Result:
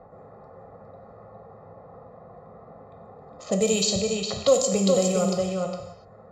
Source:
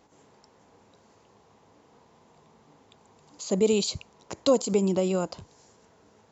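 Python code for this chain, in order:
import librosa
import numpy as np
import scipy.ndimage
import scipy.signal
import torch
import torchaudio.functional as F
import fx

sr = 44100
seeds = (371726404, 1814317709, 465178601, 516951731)

p1 = fx.wiener(x, sr, points=15)
p2 = p1 + 0.88 * np.pad(p1, (int(1.6 * sr / 1000.0), 0))[:len(p1)]
p3 = p2 + fx.echo_single(p2, sr, ms=409, db=-5.5, dry=0)
p4 = fx.env_lowpass(p3, sr, base_hz=1300.0, full_db=-19.5)
p5 = fx.high_shelf(p4, sr, hz=5600.0, db=10.5)
p6 = fx.rev_gated(p5, sr, seeds[0], gate_ms=320, shape='falling', drr_db=3.0)
y = fx.band_squash(p6, sr, depth_pct=40)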